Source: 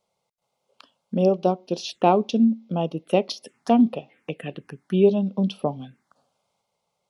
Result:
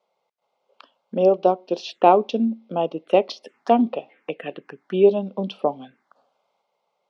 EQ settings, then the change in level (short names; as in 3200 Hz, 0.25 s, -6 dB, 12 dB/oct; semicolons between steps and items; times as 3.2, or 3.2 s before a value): HPF 370 Hz 12 dB/oct; air absorption 100 m; high shelf 4300 Hz -9 dB; +5.5 dB